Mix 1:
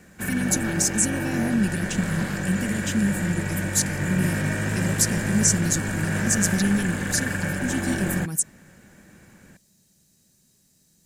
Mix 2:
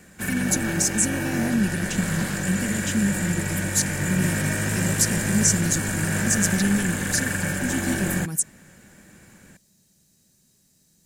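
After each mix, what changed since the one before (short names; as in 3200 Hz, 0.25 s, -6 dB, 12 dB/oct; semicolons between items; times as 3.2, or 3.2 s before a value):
background: add high shelf 5000 Hz +11 dB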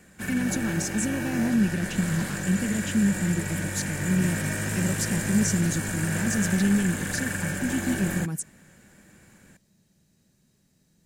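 speech: add tone controls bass +1 dB, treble -11 dB; background -4.0 dB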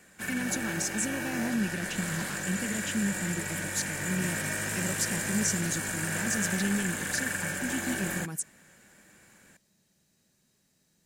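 master: add low shelf 310 Hz -11 dB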